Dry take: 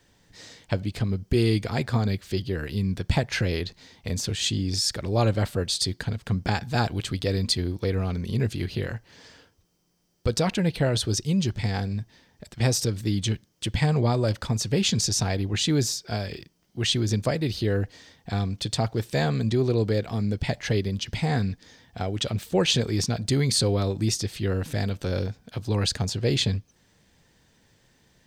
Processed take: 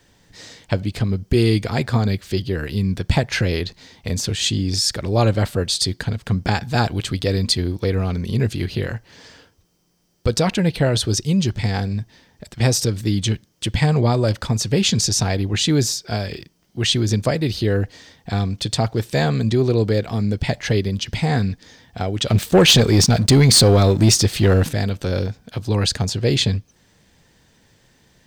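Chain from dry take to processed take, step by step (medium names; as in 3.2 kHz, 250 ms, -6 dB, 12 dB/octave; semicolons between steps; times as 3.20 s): 22.30–24.69 s: waveshaping leveller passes 2; trim +5.5 dB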